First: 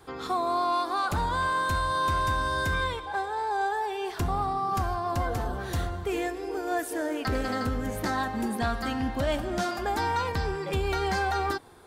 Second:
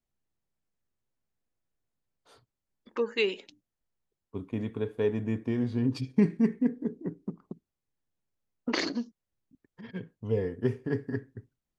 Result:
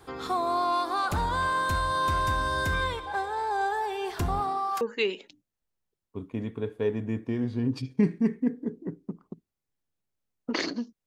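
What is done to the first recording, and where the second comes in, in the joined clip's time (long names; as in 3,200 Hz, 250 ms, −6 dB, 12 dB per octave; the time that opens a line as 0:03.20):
first
0:04.39–0:04.81: high-pass filter 160 Hz → 990 Hz
0:04.81: continue with second from 0:03.00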